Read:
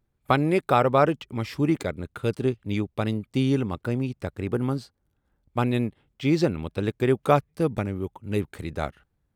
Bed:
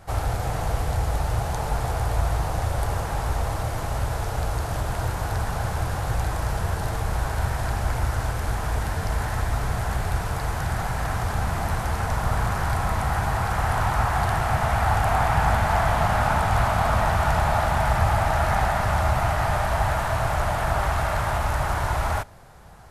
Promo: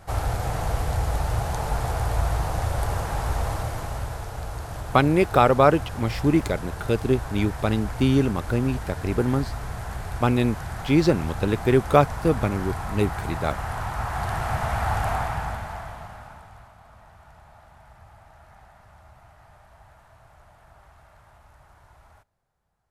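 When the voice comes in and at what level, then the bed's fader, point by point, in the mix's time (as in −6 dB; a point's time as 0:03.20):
4.65 s, +3.0 dB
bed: 0:03.51 −0.5 dB
0:04.30 −7 dB
0:13.94 −7 dB
0:14.45 −3.5 dB
0:15.09 −3.5 dB
0:16.76 −29.5 dB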